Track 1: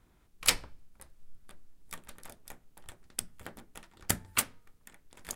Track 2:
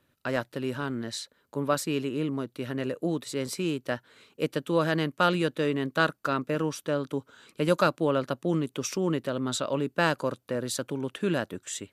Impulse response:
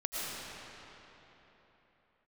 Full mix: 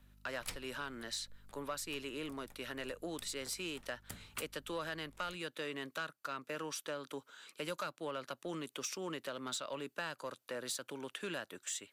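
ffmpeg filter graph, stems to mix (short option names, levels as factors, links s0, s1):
-filter_complex "[0:a]tremolo=f=2.1:d=0.76,aeval=exprs='val(0)+0.002*(sin(2*PI*50*n/s)+sin(2*PI*2*50*n/s)/2+sin(2*PI*3*50*n/s)/3+sin(2*PI*4*50*n/s)/4+sin(2*PI*5*50*n/s)/5)':c=same,volume=0.398[s0];[1:a]highpass=f=1400:p=1,volume=1.06[s1];[s0][s1]amix=inputs=2:normalize=0,acrossover=split=160[s2][s3];[s3]acompressor=threshold=0.0141:ratio=4[s4];[s2][s4]amix=inputs=2:normalize=0,asoftclip=type=tanh:threshold=0.0355"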